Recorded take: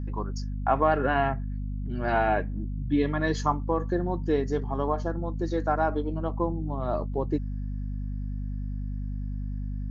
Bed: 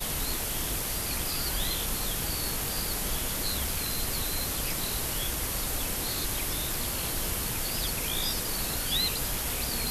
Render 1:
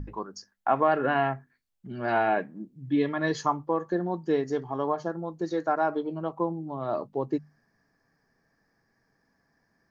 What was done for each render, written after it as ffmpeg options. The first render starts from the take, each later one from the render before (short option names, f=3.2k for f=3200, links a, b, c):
-af "bandreject=f=50:t=h:w=6,bandreject=f=100:t=h:w=6,bandreject=f=150:t=h:w=6,bandreject=f=200:t=h:w=6,bandreject=f=250:t=h:w=6"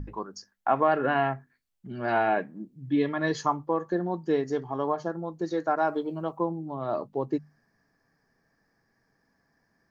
-filter_complex "[0:a]asettb=1/sr,asplit=3[a][b][c];[a]atrim=end=5.784[d];[b]atrim=start=5.78:end=6.37,asetpts=PTS-STARTPTS,afade=t=in:d=0.004:c=qsin,afade=t=out:st=0.586:d=0.004:c=qsin,highshelf=f=5.5k:g=9.5[e];[c]atrim=start=6.366[f];[d][e]acrossfade=d=0.004:c1=hsin:c2=qsin[g];[g][f]acrossfade=d=0.004:c1=qsin:c2=hsin"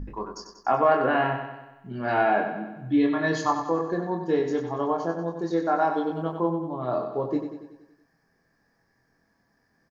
-filter_complex "[0:a]asplit=2[a][b];[b]adelay=24,volume=-4dB[c];[a][c]amix=inputs=2:normalize=0,asplit=2[d][e];[e]aecho=0:1:94|188|282|376|470|564|658:0.398|0.219|0.12|0.0662|0.0364|0.02|0.011[f];[d][f]amix=inputs=2:normalize=0"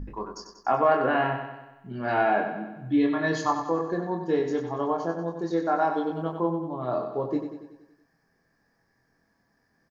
-af "volume=-1dB"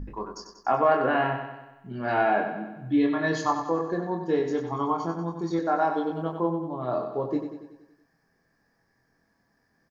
-filter_complex "[0:a]asettb=1/sr,asplit=3[a][b][c];[a]atrim=end=4.724[d];[b]atrim=start=4.72:end=5.59,asetpts=PTS-STARTPTS,afade=t=in:d=0.004:c=qsin,afade=t=out:st=0.866:d=0.004:c=qsin,aecho=1:1:0.9:0.65,atrim=end_sample=38367[e];[c]atrim=start=5.586[f];[d][e]acrossfade=d=0.004:c1=hsin:c2=qsin[g];[g][f]acrossfade=d=0.004:c1=qsin:c2=hsin"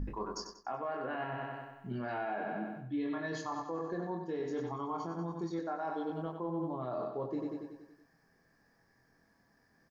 -af "areverse,acompressor=threshold=-30dB:ratio=12,areverse,alimiter=level_in=4.5dB:limit=-24dB:level=0:latency=1:release=146,volume=-4.5dB"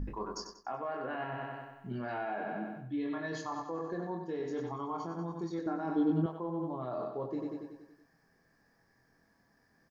-filter_complex "[0:a]asettb=1/sr,asplit=3[a][b][c];[a]atrim=end=5.664[d];[b]atrim=start=5.66:end=6.26,asetpts=PTS-STARTPTS,afade=t=in:d=0.004:c=qsin,afade=t=out:st=0.596:d=0.004:c=qsin,lowshelf=f=410:t=q:w=1.5:g=10[e];[c]atrim=start=6.256[f];[d][e]acrossfade=d=0.004:c1=hsin:c2=qsin[g];[g][f]acrossfade=d=0.004:c1=qsin:c2=hsin"